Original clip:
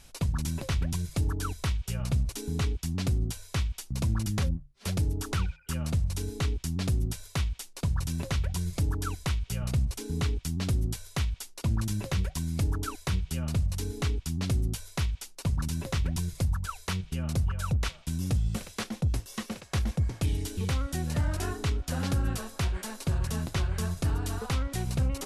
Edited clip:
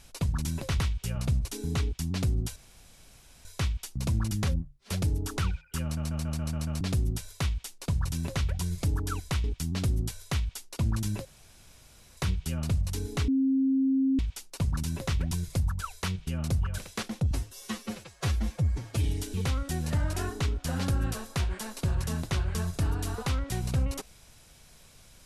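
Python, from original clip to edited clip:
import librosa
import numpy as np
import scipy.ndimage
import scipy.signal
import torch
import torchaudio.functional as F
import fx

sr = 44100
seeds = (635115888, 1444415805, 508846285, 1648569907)

y = fx.edit(x, sr, fx.cut(start_s=0.8, length_s=0.84),
    fx.insert_room_tone(at_s=3.4, length_s=0.89),
    fx.stutter_over(start_s=5.78, slice_s=0.14, count=7),
    fx.cut(start_s=9.39, length_s=0.9),
    fx.room_tone_fill(start_s=12.1, length_s=0.92),
    fx.bleep(start_s=14.13, length_s=0.91, hz=267.0, db=-21.5),
    fx.cut(start_s=17.63, length_s=0.96),
    fx.stretch_span(start_s=19.12, length_s=1.15, factor=1.5), tone=tone)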